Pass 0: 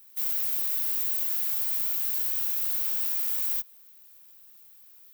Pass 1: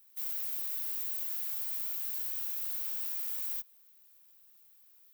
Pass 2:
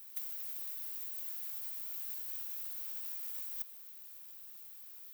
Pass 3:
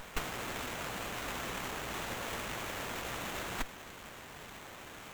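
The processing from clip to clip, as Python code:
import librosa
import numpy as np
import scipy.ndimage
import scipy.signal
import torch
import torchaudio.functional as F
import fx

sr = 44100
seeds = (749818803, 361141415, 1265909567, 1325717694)

y1 = fx.bass_treble(x, sr, bass_db=-11, treble_db=0)
y1 = y1 * librosa.db_to_amplitude(-8.0)
y2 = fx.over_compress(y1, sr, threshold_db=-41.0, ratio=-0.5)
y2 = y2 * librosa.db_to_amplitude(2.0)
y3 = fx.running_max(y2, sr, window=9)
y3 = y3 * librosa.db_to_amplitude(7.0)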